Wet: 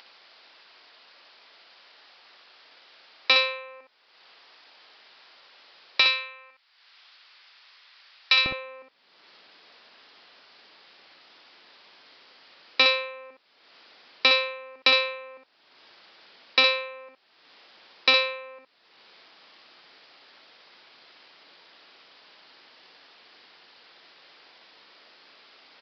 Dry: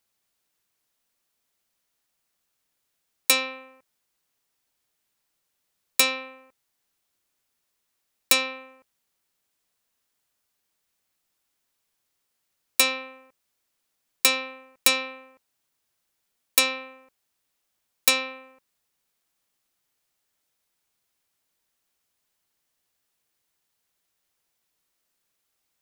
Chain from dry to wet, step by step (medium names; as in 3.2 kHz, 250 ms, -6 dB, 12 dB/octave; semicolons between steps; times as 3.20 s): high-pass 490 Hz 12 dB/octave, from 6.00 s 1.2 kHz, from 8.46 s 310 Hz; upward compressor, threshold -30 dBFS; early reflections 52 ms -13.5 dB, 63 ms -5.5 dB; resampled via 11.025 kHz; trim +2.5 dB